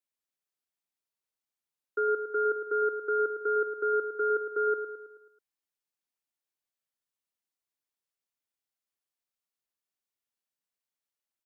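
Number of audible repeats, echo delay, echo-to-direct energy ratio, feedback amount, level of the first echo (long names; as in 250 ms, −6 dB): 5, 108 ms, −7.5 dB, 51%, −9.0 dB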